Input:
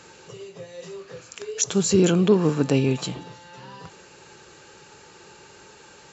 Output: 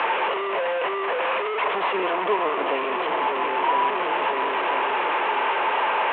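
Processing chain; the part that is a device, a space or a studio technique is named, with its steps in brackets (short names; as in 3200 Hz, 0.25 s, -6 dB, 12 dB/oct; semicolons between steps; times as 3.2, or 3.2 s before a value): swung echo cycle 1.004 s, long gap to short 1.5:1, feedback 31%, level -13.5 dB; 1.78–2.96 HPF 130 Hz 12 dB/oct; digital answering machine (BPF 380–3400 Hz; delta modulation 16 kbps, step -18 dBFS; speaker cabinet 470–3500 Hz, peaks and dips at 660 Hz +6 dB, 1000 Hz +10 dB, 1500 Hz -3 dB)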